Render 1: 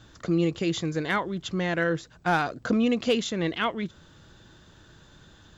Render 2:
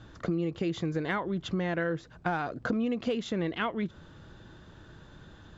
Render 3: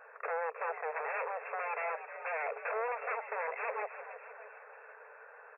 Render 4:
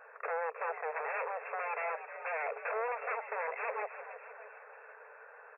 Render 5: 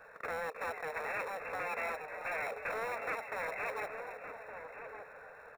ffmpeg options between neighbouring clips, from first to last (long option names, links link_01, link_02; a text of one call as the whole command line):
ffmpeg -i in.wav -af "lowpass=frequency=1800:poles=1,acompressor=threshold=-30dB:ratio=6,volume=3dB" out.wav
ffmpeg -i in.wav -filter_complex "[0:a]aeval=exprs='0.0211*(abs(mod(val(0)/0.0211+3,4)-2)-1)':channel_layout=same,asplit=8[link_01][link_02][link_03][link_04][link_05][link_06][link_07][link_08];[link_02]adelay=312,afreqshift=-99,volume=-11dB[link_09];[link_03]adelay=624,afreqshift=-198,volume=-15.7dB[link_10];[link_04]adelay=936,afreqshift=-297,volume=-20.5dB[link_11];[link_05]adelay=1248,afreqshift=-396,volume=-25.2dB[link_12];[link_06]adelay=1560,afreqshift=-495,volume=-29.9dB[link_13];[link_07]adelay=1872,afreqshift=-594,volume=-34.7dB[link_14];[link_08]adelay=2184,afreqshift=-693,volume=-39.4dB[link_15];[link_01][link_09][link_10][link_11][link_12][link_13][link_14][link_15]amix=inputs=8:normalize=0,afftfilt=real='re*between(b*sr/4096,410,2700)':imag='im*between(b*sr/4096,410,2700)':win_size=4096:overlap=0.75,volume=4.5dB" out.wav
ffmpeg -i in.wav -af anull out.wav
ffmpeg -i in.wav -filter_complex "[0:a]acrossover=split=880|970[link_01][link_02][link_03];[link_01]asoftclip=type=tanh:threshold=-39.5dB[link_04];[link_02]acrusher=samples=28:mix=1:aa=0.000001[link_05];[link_04][link_05][link_03]amix=inputs=3:normalize=0,asplit=2[link_06][link_07];[link_07]adelay=1166,volume=-7dB,highshelf=frequency=4000:gain=-26.2[link_08];[link_06][link_08]amix=inputs=2:normalize=0,volume=1dB" out.wav